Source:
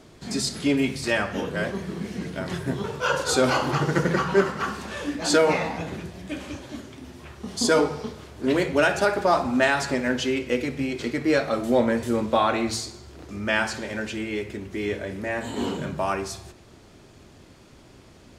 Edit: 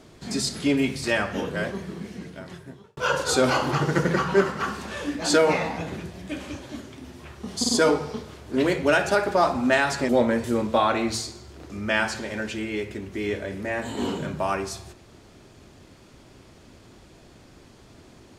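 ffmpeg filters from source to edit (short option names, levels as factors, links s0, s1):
-filter_complex "[0:a]asplit=5[s0][s1][s2][s3][s4];[s0]atrim=end=2.97,asetpts=PTS-STARTPTS,afade=t=out:st=1.47:d=1.5[s5];[s1]atrim=start=2.97:end=7.642,asetpts=PTS-STARTPTS,afade=t=in:d=0.004:c=hsin[s6];[s2]atrim=start=7.588:end=7.642[s7];[s3]atrim=start=7.588:end=9.992[s8];[s4]atrim=start=11.678[s9];[s5][s6]concat=n=2:v=0:a=1[s10];[s10][s7]acrossfade=d=0.004:c1=hsin:c2=hsin[s11];[s11][s8]acrossfade=d=0.004:c1=hsin:c2=hsin[s12];[s12][s9]acrossfade=d=0.004:c1=hsin:c2=hsin"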